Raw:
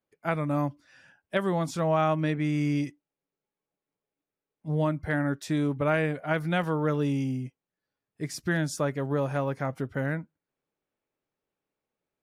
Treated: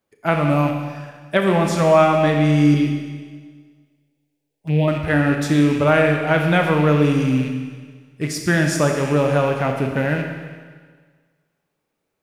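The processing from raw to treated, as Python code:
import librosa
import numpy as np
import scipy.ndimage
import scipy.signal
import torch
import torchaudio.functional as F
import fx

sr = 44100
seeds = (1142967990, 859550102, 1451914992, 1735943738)

y = fx.rattle_buzz(x, sr, strikes_db=-38.0, level_db=-34.0)
y = fx.env_phaser(y, sr, low_hz=210.0, high_hz=1300.0, full_db=-29.5, at=(2.74, 4.88))
y = fx.rev_schroeder(y, sr, rt60_s=1.6, comb_ms=27, drr_db=3.0)
y = y * 10.0 ** (9.0 / 20.0)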